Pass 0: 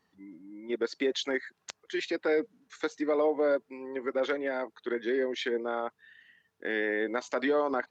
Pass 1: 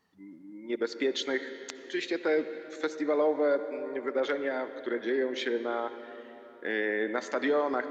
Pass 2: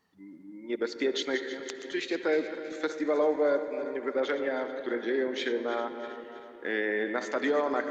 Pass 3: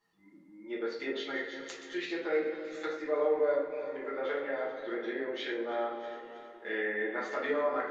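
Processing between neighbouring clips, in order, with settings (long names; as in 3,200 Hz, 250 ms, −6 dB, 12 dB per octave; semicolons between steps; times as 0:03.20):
mains-hum notches 60/120 Hz; on a send at −10.5 dB: convolution reverb RT60 3.8 s, pre-delay 58 ms
feedback delay that plays each chunk backwards 160 ms, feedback 68%, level −11.5 dB
treble cut that deepens with the level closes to 2,800 Hz, closed at −25.5 dBFS; low-shelf EQ 380 Hz −7.5 dB; rectangular room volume 52 cubic metres, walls mixed, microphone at 1.3 metres; level −8.5 dB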